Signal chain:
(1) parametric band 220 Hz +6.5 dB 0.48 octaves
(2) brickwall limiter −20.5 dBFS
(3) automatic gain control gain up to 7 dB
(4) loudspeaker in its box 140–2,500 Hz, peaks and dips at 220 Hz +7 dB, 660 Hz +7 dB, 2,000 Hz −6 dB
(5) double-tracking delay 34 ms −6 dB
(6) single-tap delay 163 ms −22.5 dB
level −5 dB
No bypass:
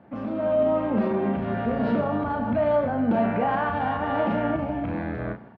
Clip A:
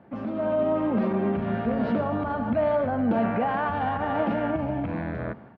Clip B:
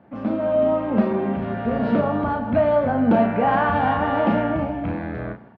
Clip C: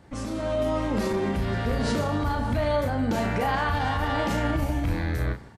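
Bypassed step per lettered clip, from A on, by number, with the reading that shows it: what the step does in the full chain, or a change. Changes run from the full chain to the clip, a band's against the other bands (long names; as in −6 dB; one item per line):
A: 5, change in integrated loudness −1.0 LU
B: 2, average gain reduction 3.0 dB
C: 4, change in crest factor −2.0 dB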